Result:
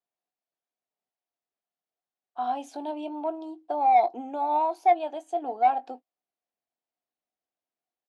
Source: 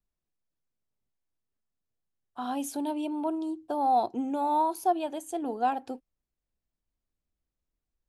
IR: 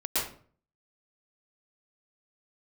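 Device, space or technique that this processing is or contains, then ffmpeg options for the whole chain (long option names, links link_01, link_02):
intercom: -filter_complex "[0:a]highpass=340,lowpass=4500,equalizer=frequency=720:width_type=o:width=0.39:gain=11,asoftclip=type=tanh:threshold=-10.5dB,asplit=2[link_01][link_02];[link_02]adelay=20,volume=-12dB[link_03];[link_01][link_03]amix=inputs=2:normalize=0,volume=-2dB"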